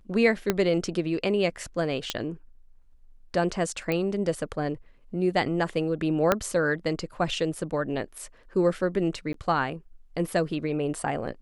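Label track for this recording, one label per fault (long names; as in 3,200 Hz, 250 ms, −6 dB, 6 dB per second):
0.500000	0.500000	click −8 dBFS
2.100000	2.100000	click −10 dBFS
3.920000	3.920000	click −15 dBFS
6.320000	6.320000	click −7 dBFS
9.330000	9.340000	drop-out 13 ms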